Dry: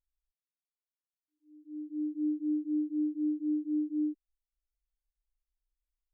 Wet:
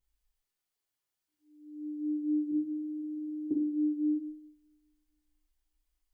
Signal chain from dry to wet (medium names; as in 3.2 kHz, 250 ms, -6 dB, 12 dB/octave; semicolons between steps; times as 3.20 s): 2.51–3.51 s: hum notches 60/120/180/240/300 Hz; two-slope reverb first 0.53 s, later 1.8 s, from -28 dB, DRR -5.5 dB; trim +1.5 dB